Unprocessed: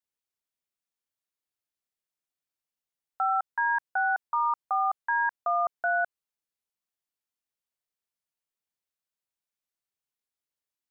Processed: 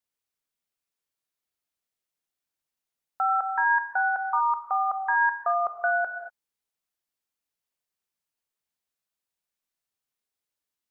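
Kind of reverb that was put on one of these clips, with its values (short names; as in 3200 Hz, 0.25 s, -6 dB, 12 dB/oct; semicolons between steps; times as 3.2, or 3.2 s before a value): non-linear reverb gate 0.26 s flat, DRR 6.5 dB; gain +2 dB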